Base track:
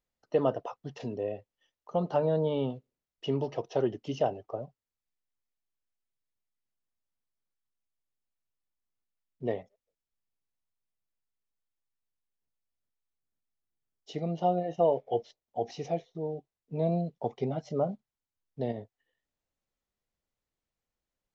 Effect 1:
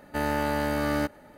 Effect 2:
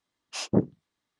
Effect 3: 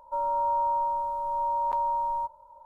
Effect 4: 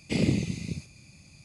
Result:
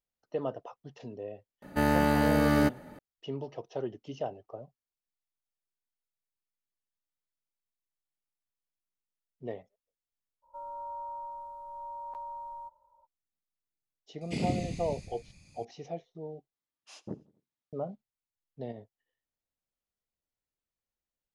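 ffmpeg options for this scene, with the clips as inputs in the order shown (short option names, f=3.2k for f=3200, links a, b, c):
-filter_complex "[0:a]volume=-7dB[a];[1:a]equalizer=f=180:t=o:w=1.5:g=6.5[b];[4:a]asplit=6[c][d][e][f][g][h];[d]adelay=147,afreqshift=-64,volume=-10dB[i];[e]adelay=294,afreqshift=-128,volume=-16.7dB[j];[f]adelay=441,afreqshift=-192,volume=-23.5dB[k];[g]adelay=588,afreqshift=-256,volume=-30.2dB[l];[h]adelay=735,afreqshift=-320,volume=-37dB[m];[c][i][j][k][l][m]amix=inputs=6:normalize=0[n];[2:a]aecho=1:1:86|172|258:0.0668|0.0327|0.016[o];[a]asplit=2[p][q];[p]atrim=end=16.544[r];[o]atrim=end=1.19,asetpts=PTS-STARTPTS,volume=-17.5dB[s];[q]atrim=start=17.726[t];[b]atrim=end=1.37,asetpts=PTS-STARTPTS,afade=t=in:d=0.004:c=hsin,afade=t=out:st=1.366:d=0.004:c=hsin,adelay=1620[u];[3:a]atrim=end=2.65,asetpts=PTS-STARTPTS,volume=-14dB,afade=t=in:d=0.02,afade=t=out:st=2.63:d=0.02,adelay=459522S[v];[n]atrim=end=1.44,asetpts=PTS-STARTPTS,volume=-7dB,afade=t=in:d=0.004:c=hsin,afade=t=out:st=1.436:d=0.004:c=hsin,adelay=14210[w];[r][s]acrossfade=d=0.004:c1=hsin:c2=hsin[x];[x][t]acrossfade=d=0.004:c1=hsin:c2=hsin[y];[y][u][v][w]amix=inputs=4:normalize=0"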